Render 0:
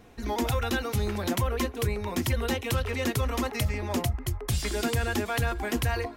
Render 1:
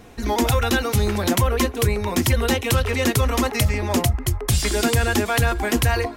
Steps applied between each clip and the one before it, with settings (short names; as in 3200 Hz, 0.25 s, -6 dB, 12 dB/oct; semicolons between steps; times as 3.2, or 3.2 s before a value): bell 8600 Hz +3 dB 1.4 oct; gain +8 dB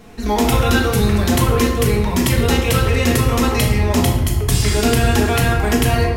shoebox room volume 470 m³, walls mixed, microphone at 1.5 m